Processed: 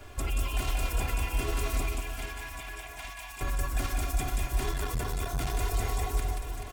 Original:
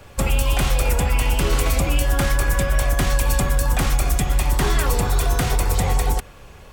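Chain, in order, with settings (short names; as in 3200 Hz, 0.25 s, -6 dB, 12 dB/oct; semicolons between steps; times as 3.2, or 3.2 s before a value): comb 2.9 ms, depth 79%; limiter -18 dBFS, peak gain reduction 11.5 dB; 1.82–3.41 rippled Chebyshev high-pass 630 Hz, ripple 9 dB; on a send: reverse bouncing-ball echo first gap 0.18 s, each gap 1.4×, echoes 5; 4.71–5.55 on the sum: core saturation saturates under 110 Hz; gain -5.5 dB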